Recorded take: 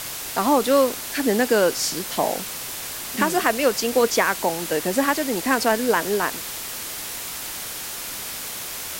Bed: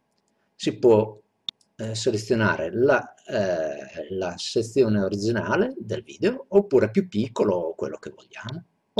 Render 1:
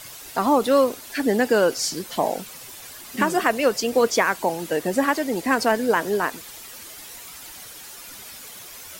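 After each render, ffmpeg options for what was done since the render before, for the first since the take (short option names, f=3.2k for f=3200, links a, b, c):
-af "afftdn=nr=11:nf=-32"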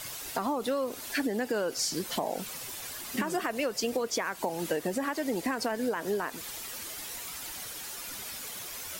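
-af "alimiter=limit=-14dB:level=0:latency=1:release=200,acompressor=threshold=-27dB:ratio=6"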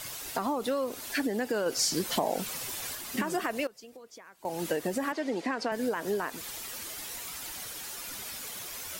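-filter_complex "[0:a]asettb=1/sr,asplit=3[a][b][c];[a]atrim=end=5.124[d];[b]atrim=start=5.12:end=5.72,asetpts=PTS-STARTPTS,afade=t=in:d=0.004:c=qsin,afade=t=out:st=0.596:d=0.004:c=qsin,highpass=200,lowpass=5k[e];[c]atrim=start=5.716[f];[d][e]acrossfade=d=0.004:c1=hsin:c2=qsin[g];[g][f]acrossfade=d=0.004:c1=qsin:c2=hsin,asplit=5[h][i][j][k][l];[h]atrim=end=1.662[m];[i]atrim=start=1.658:end=2.952,asetpts=PTS-STARTPTS,volume=3dB[n];[j]atrim=start=2.948:end=3.67,asetpts=PTS-STARTPTS,afade=t=out:st=0.562:d=0.16:c=log:silence=0.112202[o];[k]atrim=start=3.67:end=4.45,asetpts=PTS-STARTPTS,volume=-19dB[p];[l]atrim=start=4.45,asetpts=PTS-STARTPTS,afade=t=in:d=0.16:c=log:silence=0.112202[q];[m][n]acrossfade=d=0.004:c1=hsin:c2=hsin[r];[o][p][q]concat=n=3:v=0:a=1[s];[r][s]acrossfade=d=0.004:c1=hsin:c2=hsin"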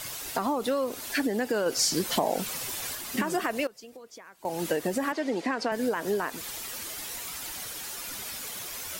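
-af "volume=2.5dB"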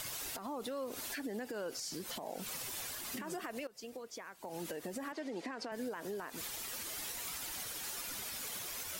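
-af "acompressor=threshold=-35dB:ratio=4,alimiter=level_in=8dB:limit=-24dB:level=0:latency=1:release=187,volume=-8dB"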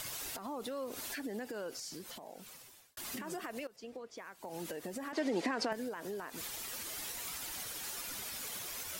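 -filter_complex "[0:a]asettb=1/sr,asplit=3[a][b][c];[a]atrim=end=3.764[d];[b]atrim=start=3.76:end=4.18,asetpts=PTS-STARTPTS,afade=t=in:d=0.004:c=qsin,afade=t=out:st=0.416:d=0.004:c=qsin,aemphasis=mode=reproduction:type=50fm[e];[c]atrim=start=4.176[f];[d][e]acrossfade=d=0.004:c1=hsin:c2=qsin[g];[g][f]acrossfade=d=0.004:c1=qsin:c2=hsin,asplit=4[h][i][j][k];[h]atrim=end=2.97,asetpts=PTS-STARTPTS,afade=t=out:st=1.46:d=1.51[l];[i]atrim=start=2.97:end=5.132,asetpts=PTS-STARTPTS,afade=t=in:d=0.004:c=hsin[m];[j]atrim=start=5.128:end=5.732,asetpts=PTS-STARTPTS,volume=8dB[n];[k]atrim=start=5.728[o];[l][m]concat=n=2:v=0:a=1[p];[p][n]acrossfade=d=0.004:c1=hsin:c2=hsin[q];[q][o]acrossfade=d=0.004:c1=hsin:c2=hsin"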